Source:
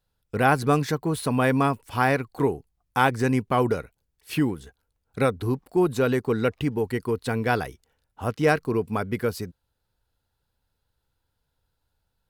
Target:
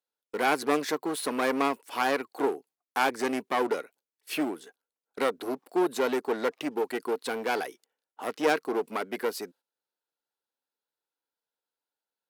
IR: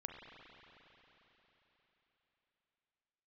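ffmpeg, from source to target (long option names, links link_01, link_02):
-af "aeval=exprs='clip(val(0),-1,0.0473)':channel_layout=same,highpass=frequency=290:width=0.5412,highpass=frequency=290:width=1.3066,agate=range=-12dB:threshold=-55dB:ratio=16:detection=peak"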